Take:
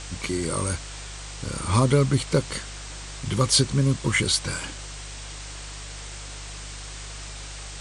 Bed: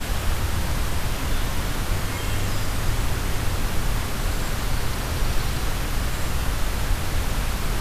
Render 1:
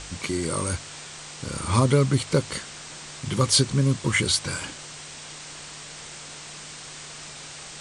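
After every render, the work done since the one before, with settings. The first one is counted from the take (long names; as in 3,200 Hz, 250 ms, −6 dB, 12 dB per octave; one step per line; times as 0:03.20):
hum removal 50 Hz, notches 2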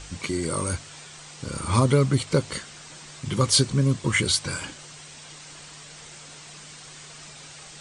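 broadband denoise 6 dB, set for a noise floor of −41 dBFS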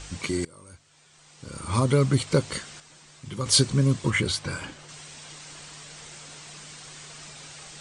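0:00.45–0:02.10: fade in quadratic, from −23 dB
0:02.80–0:03.46: clip gain −8.5 dB
0:04.10–0:04.89: high-shelf EQ 3,900 Hz −9.5 dB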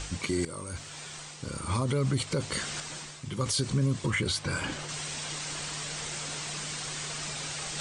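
reversed playback
upward compression, threshold −27 dBFS
reversed playback
brickwall limiter −19.5 dBFS, peak gain reduction 11.5 dB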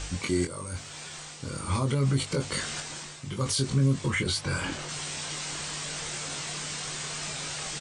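double-tracking delay 22 ms −5 dB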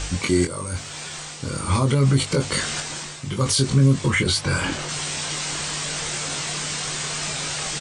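level +7.5 dB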